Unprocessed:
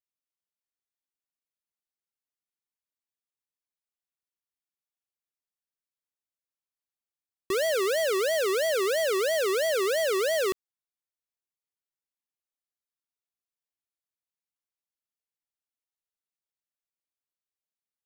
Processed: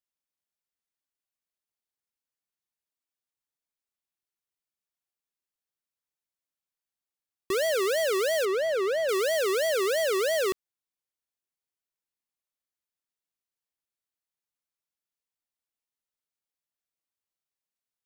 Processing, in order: 8.45–9.09 s: low-pass 1.9 kHz 6 dB/octave

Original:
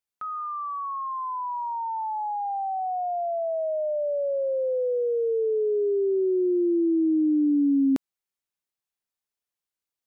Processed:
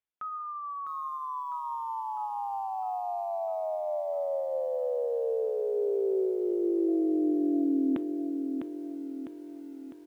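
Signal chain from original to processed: reverb removal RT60 0.8 s; 6.87–7.63 s: whistle 680 Hz -43 dBFS; on a send at -18 dB: reverberation RT60 0.35 s, pre-delay 11 ms; on the sum: resampled via 8 kHz; bit-crushed delay 653 ms, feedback 55%, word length 10-bit, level -6 dB; trim -3 dB

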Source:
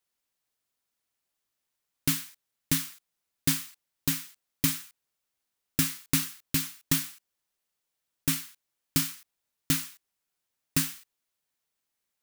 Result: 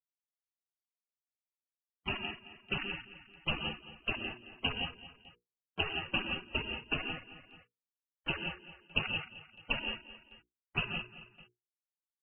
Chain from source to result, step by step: send-on-delta sampling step -23 dBFS; noise-vocoded speech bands 3; gated-style reverb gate 200 ms rising, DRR 3.5 dB; frequency inversion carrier 3 kHz; hum notches 60/120/180/240/300/360/420/480 Hz; feedback delay 219 ms, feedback 25%, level -16 dB; loudest bins only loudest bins 64; upward compressor, threshold -37 dBFS; gate with hold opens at -42 dBFS; tilt shelf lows +6.5 dB, about 660 Hz

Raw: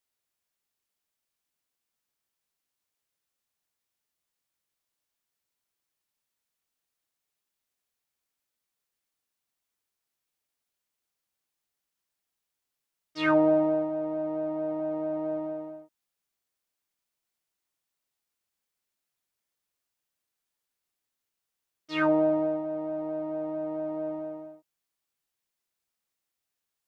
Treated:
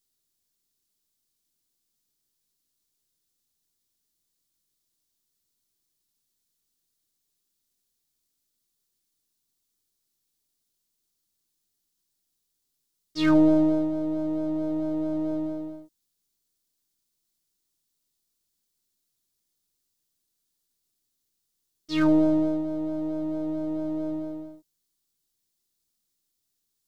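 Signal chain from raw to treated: partial rectifier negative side -3 dB; high-order bell 1.2 kHz -11.5 dB 2.8 oct; trim +9 dB

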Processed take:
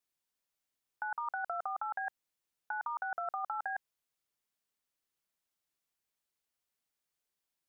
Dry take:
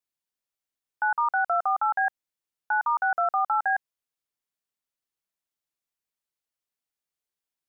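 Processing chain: compressor with a negative ratio -31 dBFS, ratio -1; trim -5.5 dB

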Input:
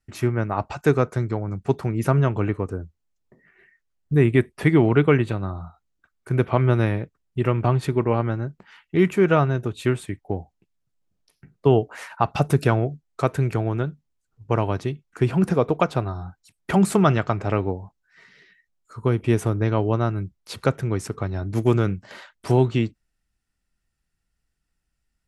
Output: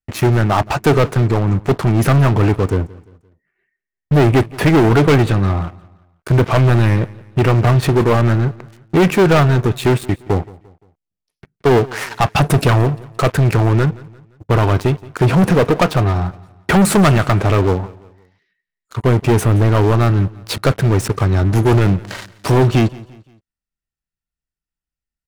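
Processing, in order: dynamic bell 6.9 kHz, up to -4 dB, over -48 dBFS, Q 1.1; waveshaping leveller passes 5; on a send: feedback delay 173 ms, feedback 41%, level -21.5 dB; on the sum: trim -3.5 dB

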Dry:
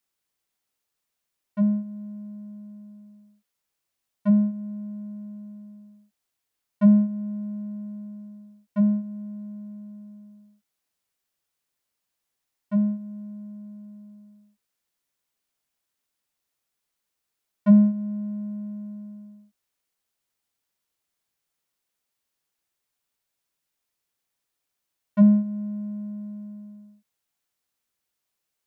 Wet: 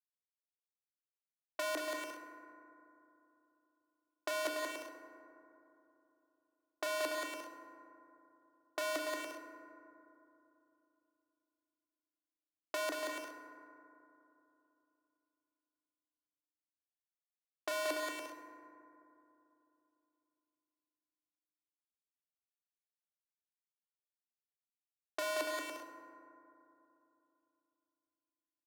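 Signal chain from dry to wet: square wave that keeps the level; hum notches 60/120/180/240/300/360/420/480/540 Hz; Schmitt trigger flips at -20.5 dBFS; level-controlled noise filter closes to 670 Hz, open at -32 dBFS; Chebyshev high-pass 300 Hz, order 8; compressor with a negative ratio -41 dBFS, ratio -1; bouncing-ball echo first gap 180 ms, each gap 0.6×, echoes 5; FDN reverb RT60 3 s, low-frequency decay 1.25×, high-frequency decay 0.3×, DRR 4.5 dB; trim +4 dB

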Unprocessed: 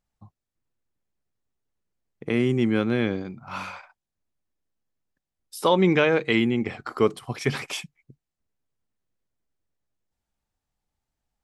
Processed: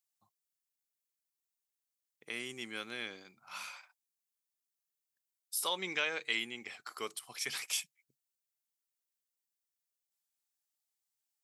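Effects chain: differentiator; trim +2 dB

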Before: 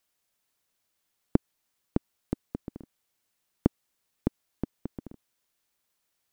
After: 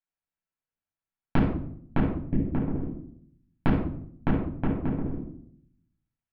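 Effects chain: spectral replace 2.25–2.47 s, 430–1600 Hz; gate -49 dBFS, range -23 dB; low-pass 2.6 kHz 24 dB/octave; compression 5:1, threshold -28 dBFS, peak gain reduction 12.5 dB; simulated room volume 1000 m³, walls furnished, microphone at 8.2 m

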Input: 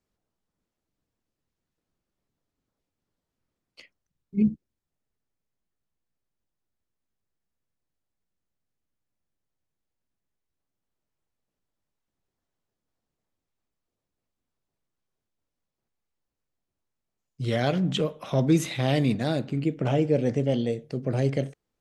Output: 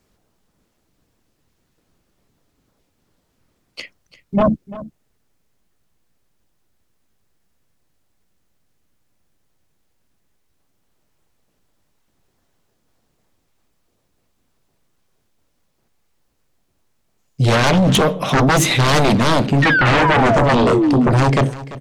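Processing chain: painted sound fall, 19.62–21.10 s, 220–1900 Hz -31 dBFS; sine folder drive 14 dB, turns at -10 dBFS; delay 342 ms -17 dB

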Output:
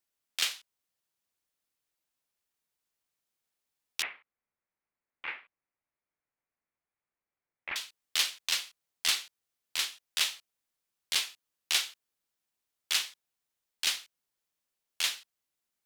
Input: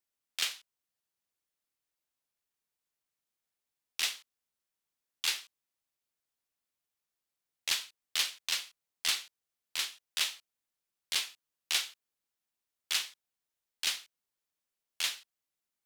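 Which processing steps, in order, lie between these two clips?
4.02–7.76 s: Chebyshev low-pass 2.3 kHz, order 4; trim +2.5 dB

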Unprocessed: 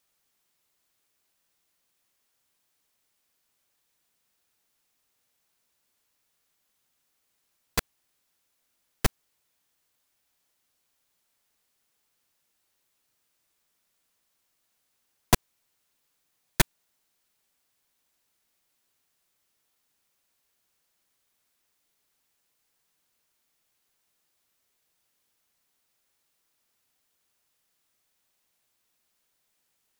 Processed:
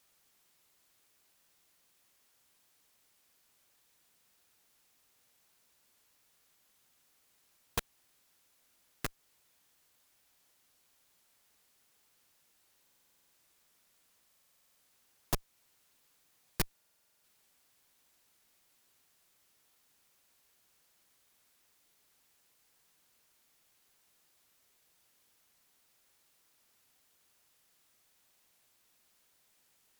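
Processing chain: tracing distortion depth 0.45 ms; in parallel at -1 dB: compression, threshold -28 dBFS, peak gain reduction 13.5 dB; on the sum: valve stage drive 28 dB, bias 0.65; buffer glitch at 12.82/14.27/16.73 s, samples 2048, times 10; trim +2.5 dB

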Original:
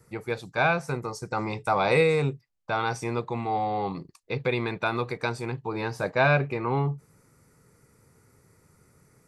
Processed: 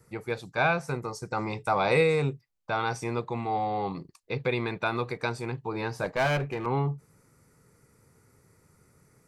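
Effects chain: 6.04–6.66 s: one-sided clip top -26 dBFS; trim -1.5 dB

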